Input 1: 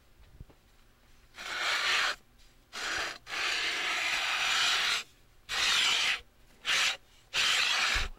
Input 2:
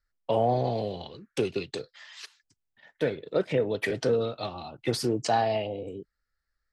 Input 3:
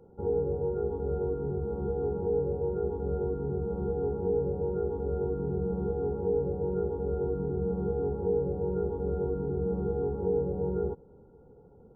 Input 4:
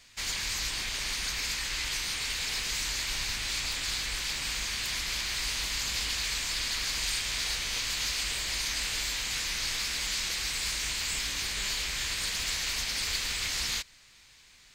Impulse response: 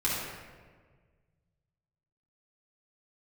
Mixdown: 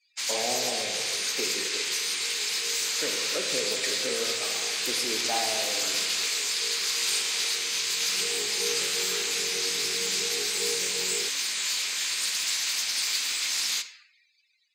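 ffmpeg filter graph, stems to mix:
-filter_complex "[0:a]aeval=exprs='max(val(0),0)':c=same,adelay=1300,volume=0.178,asplit=2[s0][s1];[s1]volume=0.531[s2];[1:a]highpass=46,volume=0.355,asplit=3[s3][s4][s5];[s4]volume=0.316[s6];[2:a]adelay=350,volume=0.473,afade=t=in:st=8.08:d=0.22:silence=0.316228[s7];[3:a]volume=0.708,asplit=2[s8][s9];[s9]volume=0.15[s10];[s5]apad=whole_len=542836[s11];[s7][s11]sidechaincompress=threshold=0.0141:ratio=6:attack=9.4:release=133[s12];[4:a]atrim=start_sample=2205[s13];[s2][s6][s10]amix=inputs=3:normalize=0[s14];[s14][s13]afir=irnorm=-1:irlink=0[s15];[s0][s3][s12][s8][s15]amix=inputs=5:normalize=0,highpass=300,afftdn=nr=32:nf=-53,highshelf=f=3400:g=9"

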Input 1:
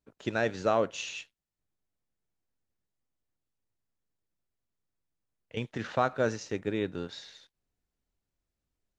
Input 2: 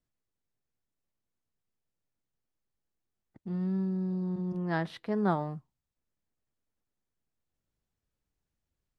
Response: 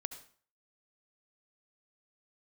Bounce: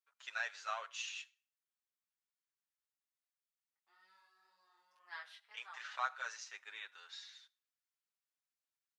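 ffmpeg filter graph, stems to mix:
-filter_complex "[0:a]volume=0.631,asplit=2[s0][s1];[s1]volume=0.224[s2];[1:a]agate=range=0.251:threshold=0.00794:ratio=16:detection=peak,flanger=delay=16.5:depth=4.2:speed=1.9,adynamicequalizer=threshold=0.00398:dfrequency=1500:dqfactor=0.7:tfrequency=1500:tqfactor=0.7:attack=5:release=100:ratio=0.375:range=2:mode=boostabove:tftype=highshelf,adelay=400,volume=0.447,afade=t=out:st=5.11:d=0.72:silence=0.354813,asplit=2[s3][s4];[s4]volume=0.473[s5];[2:a]atrim=start_sample=2205[s6];[s2][s5]amix=inputs=2:normalize=0[s7];[s7][s6]afir=irnorm=-1:irlink=0[s8];[s0][s3][s8]amix=inputs=3:normalize=0,highpass=f=1100:w=0.5412,highpass=f=1100:w=1.3066,asplit=2[s9][s10];[s10]adelay=6.9,afreqshift=2.4[s11];[s9][s11]amix=inputs=2:normalize=1"

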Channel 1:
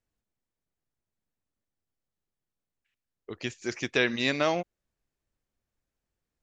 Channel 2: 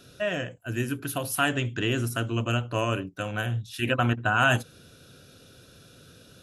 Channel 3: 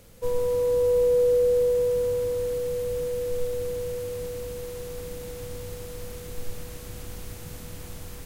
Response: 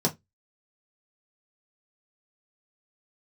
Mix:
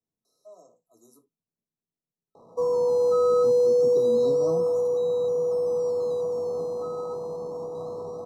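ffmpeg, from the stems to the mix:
-filter_complex "[0:a]volume=0.188,asplit=2[s0][s1];[s1]volume=0.501[s2];[1:a]highpass=780,adelay=250,volume=0.133,asplit=3[s3][s4][s5];[s3]atrim=end=1.26,asetpts=PTS-STARTPTS,afade=t=out:st=1.256:d=0.004:c=hsin[s6];[s4]atrim=start=1.26:end=2.73,asetpts=PTS-STARTPTS,volume=0[s7];[s5]atrim=start=2.73,asetpts=PTS-STARTPTS,afade=t=in:d=0.004:c=hsin[s8];[s6][s7][s8]concat=n=3:v=0:a=1,asplit=2[s9][s10];[s10]volume=0.224[s11];[2:a]acrusher=samples=19:mix=1:aa=0.000001:lfo=1:lforange=11.4:lforate=0.27,bandpass=f=900:t=q:w=0.96:csg=0,adelay=2350,volume=1.26,asplit=2[s12][s13];[s13]volume=0.266[s14];[3:a]atrim=start_sample=2205[s15];[s2][s11][s14]amix=inputs=3:normalize=0[s16];[s16][s15]afir=irnorm=-1:irlink=0[s17];[s0][s9][s12][s17]amix=inputs=4:normalize=0,afftfilt=real='re*(1-between(b*sr/4096,1300,3800))':imag='im*(1-between(b*sr/4096,1300,3800))':win_size=4096:overlap=0.75,acrossover=split=340[s18][s19];[s19]acompressor=threshold=0.0562:ratio=2[s20];[s18][s20]amix=inputs=2:normalize=0"

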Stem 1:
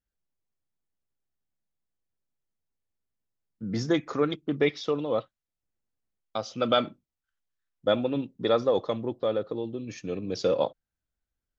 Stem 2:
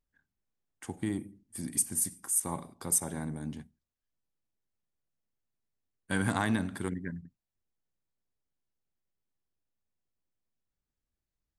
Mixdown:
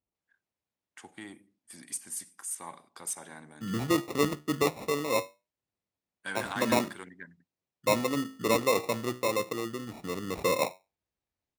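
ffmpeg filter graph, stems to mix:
-filter_complex "[0:a]flanger=delay=9.6:depth=9.2:regen=76:speed=0.18:shape=triangular,acrusher=samples=28:mix=1:aa=0.000001,volume=1.33[s0];[1:a]asoftclip=type=tanh:threshold=0.106,bandpass=f=2500:t=q:w=0.54:csg=0,adelay=150,volume=1.12[s1];[s0][s1]amix=inputs=2:normalize=0,highpass=67"

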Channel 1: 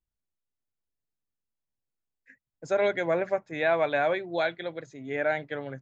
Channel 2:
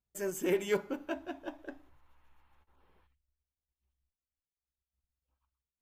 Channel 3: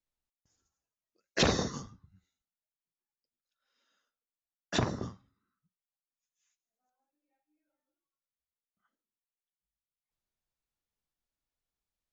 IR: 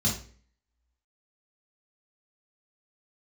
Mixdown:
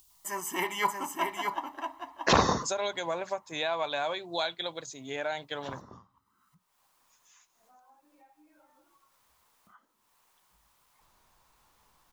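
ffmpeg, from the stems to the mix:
-filter_complex "[0:a]acompressor=threshold=0.0316:ratio=3,aexciter=amount=9.1:drive=4.3:freq=2900,volume=0.562,asplit=2[s0][s1];[1:a]highpass=f=320:p=1,tiltshelf=f=970:g=-4,aecho=1:1:1:0.81,adelay=100,volume=1.06,asplit=2[s2][s3];[s3]volume=0.562[s4];[2:a]adelay=900,volume=1.33[s5];[s1]apad=whole_len=574553[s6];[s5][s6]sidechaincompress=threshold=0.00251:ratio=12:attack=5:release=1130[s7];[s4]aecho=0:1:629:1[s8];[s0][s2][s7][s8]amix=inputs=4:normalize=0,equalizer=f=1000:t=o:w=0.81:g=14,acompressor=mode=upward:threshold=0.00398:ratio=2.5"

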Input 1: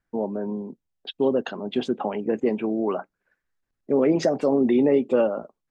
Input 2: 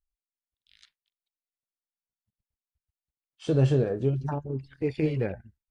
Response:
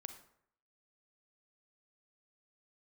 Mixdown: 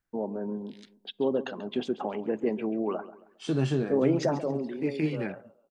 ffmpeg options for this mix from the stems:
-filter_complex "[0:a]volume=0.501,afade=t=out:st=4.22:d=0.52:silence=0.223872,asplit=3[s0][s1][s2];[s1]volume=0.15[s3];[s2]volume=0.2[s4];[1:a]highpass=f=170:w=0.5412,highpass=f=170:w=1.3066,equalizer=f=520:w=2.7:g=-14.5,volume=1.26[s5];[2:a]atrim=start_sample=2205[s6];[s3][s6]afir=irnorm=-1:irlink=0[s7];[s4]aecho=0:1:136|272|408|544|680:1|0.34|0.116|0.0393|0.0134[s8];[s0][s5][s7][s8]amix=inputs=4:normalize=0"

